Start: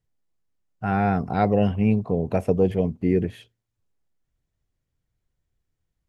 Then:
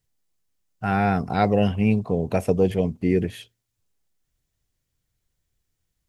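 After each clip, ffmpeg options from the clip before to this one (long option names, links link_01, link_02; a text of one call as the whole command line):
ffmpeg -i in.wav -af "highshelf=frequency=2600:gain=10.5" out.wav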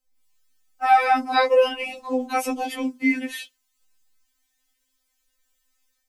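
ffmpeg -i in.wav -filter_complex "[0:a]acrossover=split=140|860[link_01][link_02][link_03];[link_03]dynaudnorm=framelen=120:gausssize=3:maxgain=11dB[link_04];[link_01][link_02][link_04]amix=inputs=3:normalize=0,afftfilt=real='re*3.46*eq(mod(b,12),0)':imag='im*3.46*eq(mod(b,12),0)':win_size=2048:overlap=0.75" out.wav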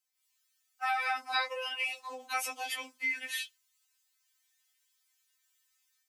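ffmpeg -i in.wav -af "acompressor=threshold=-22dB:ratio=3,highpass=1300,volume=-1dB" out.wav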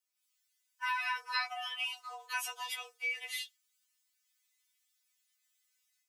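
ffmpeg -i in.wav -af "afreqshift=220,volume=-3dB" out.wav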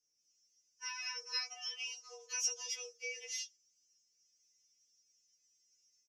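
ffmpeg -i in.wav -af "firequalizer=gain_entry='entry(520,0);entry(740,-23);entry(1300,-22);entry(2700,-12);entry(3900,-19);entry(5600,11);entry(8700,-25)':delay=0.05:min_phase=1,volume=6.5dB" out.wav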